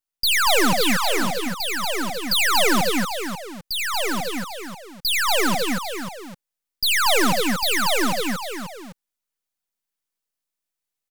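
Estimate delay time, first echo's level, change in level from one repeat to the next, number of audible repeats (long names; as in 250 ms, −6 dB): 79 ms, −15.0 dB, repeats not evenly spaced, 4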